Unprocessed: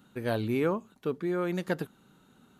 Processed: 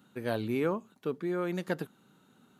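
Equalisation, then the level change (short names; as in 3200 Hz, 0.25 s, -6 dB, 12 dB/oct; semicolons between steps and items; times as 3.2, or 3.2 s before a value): HPF 110 Hz; -2.0 dB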